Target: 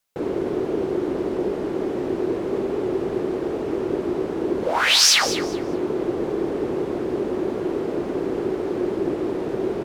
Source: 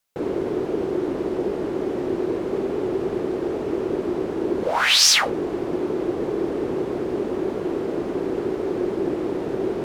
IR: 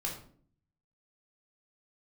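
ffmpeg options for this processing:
-af "aecho=1:1:205|410|615:0.251|0.0553|0.0122"

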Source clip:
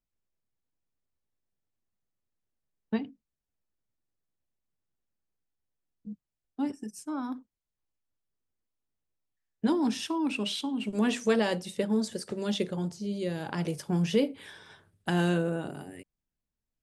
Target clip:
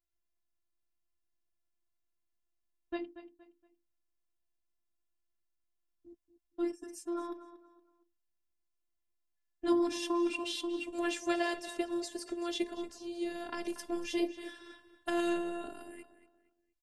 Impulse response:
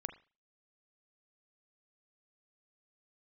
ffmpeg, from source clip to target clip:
-filter_complex "[0:a]afftfilt=real='hypot(re,im)*cos(PI*b)':imag='0':win_size=512:overlap=0.75,asplit=2[a][b];[b]adelay=234,lowpass=f=4.6k:p=1,volume=-13dB,asplit=2[c][d];[d]adelay=234,lowpass=f=4.6k:p=1,volume=0.33,asplit=2[e][f];[f]adelay=234,lowpass=f=4.6k:p=1,volume=0.33[g];[a][c][e][g]amix=inputs=4:normalize=0"

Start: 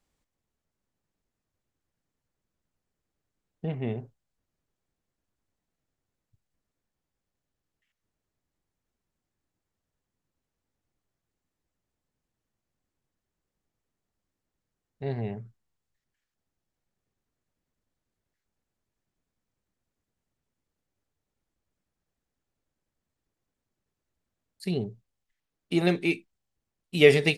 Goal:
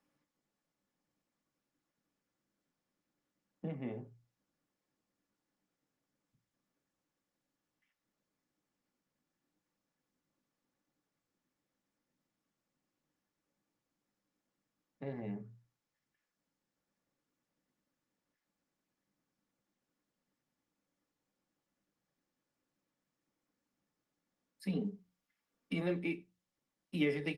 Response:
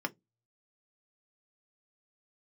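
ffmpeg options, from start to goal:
-filter_complex "[0:a]bandreject=f=60:t=h:w=6,bandreject=f=120:t=h:w=6,bandreject=f=180:t=h:w=6,asettb=1/sr,asplit=3[a][b][c];[a]atrim=end=24.684[d];[b]atrim=start=24.68:end=25.81,asetpts=PTS-STARTPTS,afade=t=in:d=0.004:c=qsin,afade=t=out:st=1.126:d=0.004:c=qsin,aecho=1:1:4.3:0.89,atrim=end_sample=49833[e];[c]atrim=start=25.806[f];[d][e]acrossfade=d=0.004:c1=hsin:c2=qsin[g];[g][f]acrossfade=d=0.004:c1=qsin:c2=hsin,acompressor=threshold=-42dB:ratio=2,asplit=2[h][i];[i]adelay=93.29,volume=-27dB,highshelf=f=4k:g=-2.1[j];[h][j]amix=inputs=2:normalize=0[k];[1:a]atrim=start_sample=2205,afade=t=out:st=0.14:d=0.01,atrim=end_sample=6615[l];[k][l]afir=irnorm=-1:irlink=0,volume=-4dB" -ar 48000 -c:a libopus -b:a 24k

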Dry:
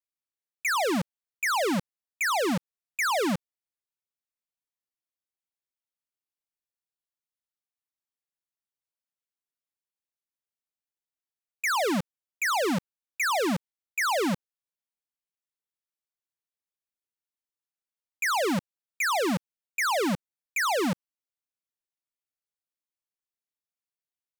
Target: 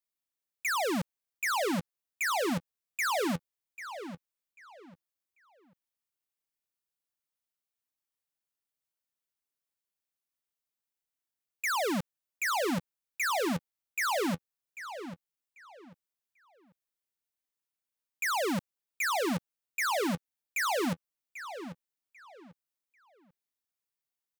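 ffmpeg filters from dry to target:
-filter_complex "[0:a]highshelf=f=11k:g=5.5,asoftclip=type=tanh:threshold=-28.5dB,asplit=2[a][b];[b]adelay=792,lowpass=f=3.8k:p=1,volume=-11dB,asplit=2[c][d];[d]adelay=792,lowpass=f=3.8k:p=1,volume=0.27,asplit=2[e][f];[f]adelay=792,lowpass=f=3.8k:p=1,volume=0.27[g];[a][c][e][g]amix=inputs=4:normalize=0"

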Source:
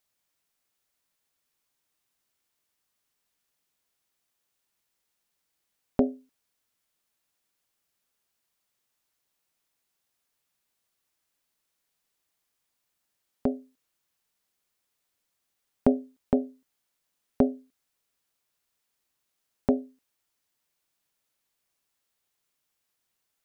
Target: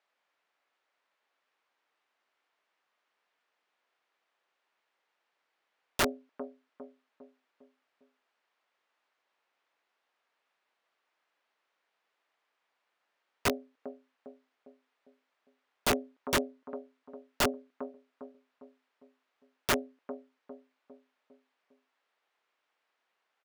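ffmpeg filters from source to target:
-filter_complex "[0:a]aeval=exprs='0.531*sin(PI/2*2.24*val(0)/0.531)':c=same,highpass=510,lowpass=2.2k,asplit=2[a][b];[b]adelay=403,lowpass=f=1k:p=1,volume=-15dB,asplit=2[c][d];[d]adelay=403,lowpass=f=1k:p=1,volume=0.49,asplit=2[e][f];[f]adelay=403,lowpass=f=1k:p=1,volume=0.49,asplit=2[g][h];[h]adelay=403,lowpass=f=1k:p=1,volume=0.49,asplit=2[i][j];[j]adelay=403,lowpass=f=1k:p=1,volume=0.49[k];[a][c][e][g][i][k]amix=inputs=6:normalize=0,aeval=exprs='(mod(7.94*val(0)+1,2)-1)/7.94':c=same,volume=-2dB"

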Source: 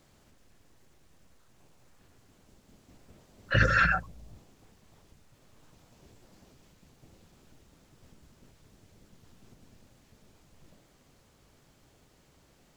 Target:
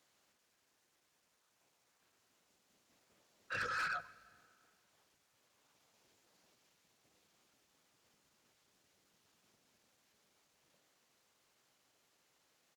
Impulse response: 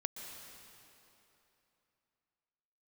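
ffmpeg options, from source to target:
-filter_complex "[0:a]highpass=f=1.1k:p=1,asetrate=41625,aresample=44100,atempo=1.05946,asoftclip=type=tanh:threshold=-26.5dB,asplit=2[a][b];[1:a]atrim=start_sample=2205,asetrate=70560,aresample=44100[c];[b][c]afir=irnorm=-1:irlink=0,volume=-9.5dB[d];[a][d]amix=inputs=2:normalize=0,volume=-8.5dB"

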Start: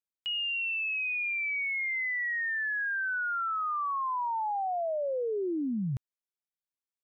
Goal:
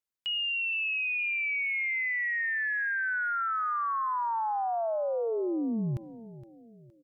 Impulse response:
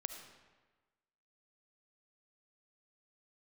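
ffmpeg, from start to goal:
-filter_complex "[0:a]aecho=1:1:466|932|1398|1864:0.15|0.0613|0.0252|0.0103,asplit=2[a][b];[1:a]atrim=start_sample=2205[c];[b][c]afir=irnorm=-1:irlink=0,volume=-14.5dB[d];[a][d]amix=inputs=2:normalize=0"

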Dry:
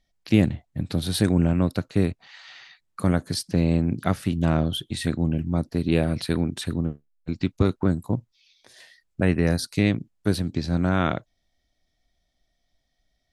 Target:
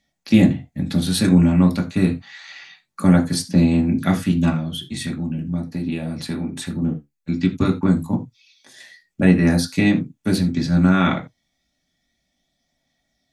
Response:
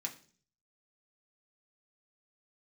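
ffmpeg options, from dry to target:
-filter_complex "[0:a]aphaser=in_gain=1:out_gain=1:delay=1:decay=0.23:speed=0.31:type=triangular,asettb=1/sr,asplit=3[a][b][c];[a]atrim=end=4.494[d];[b]atrim=start=4.49:end=6.82,asetpts=PTS-STARTPTS,afade=t=in:d=0.004:c=qsin,afade=t=out:st=2.326:d=0.004:c=qsin,acompressor=threshold=-28dB:ratio=3[e];[c]atrim=start=6.816[f];[d][e]acrossfade=d=0.004:c1=hsin:c2=qsin[g];[g][f]acrossfade=d=0.004:c1=qsin:c2=hsin[h];[1:a]atrim=start_sample=2205,atrim=end_sample=4410[i];[h][i]afir=irnorm=-1:irlink=0,volume=5.5dB"

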